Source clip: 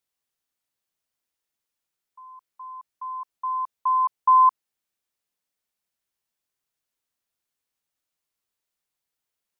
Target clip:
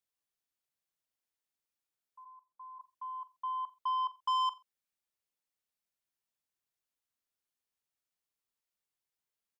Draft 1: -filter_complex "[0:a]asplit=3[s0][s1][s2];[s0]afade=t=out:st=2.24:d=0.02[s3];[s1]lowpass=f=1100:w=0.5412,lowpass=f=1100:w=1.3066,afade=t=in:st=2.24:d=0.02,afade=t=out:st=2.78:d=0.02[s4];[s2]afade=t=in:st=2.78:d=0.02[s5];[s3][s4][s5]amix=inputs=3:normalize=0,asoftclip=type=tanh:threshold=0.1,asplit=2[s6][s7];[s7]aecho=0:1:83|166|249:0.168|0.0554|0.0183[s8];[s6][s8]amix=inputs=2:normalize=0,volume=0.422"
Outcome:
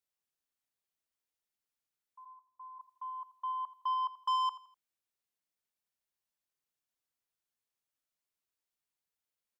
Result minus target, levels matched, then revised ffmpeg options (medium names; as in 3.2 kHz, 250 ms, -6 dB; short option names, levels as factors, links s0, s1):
echo 39 ms late
-filter_complex "[0:a]asplit=3[s0][s1][s2];[s0]afade=t=out:st=2.24:d=0.02[s3];[s1]lowpass=f=1100:w=0.5412,lowpass=f=1100:w=1.3066,afade=t=in:st=2.24:d=0.02,afade=t=out:st=2.78:d=0.02[s4];[s2]afade=t=in:st=2.78:d=0.02[s5];[s3][s4][s5]amix=inputs=3:normalize=0,asoftclip=type=tanh:threshold=0.1,asplit=2[s6][s7];[s7]aecho=0:1:44|88|132:0.168|0.0554|0.0183[s8];[s6][s8]amix=inputs=2:normalize=0,volume=0.422"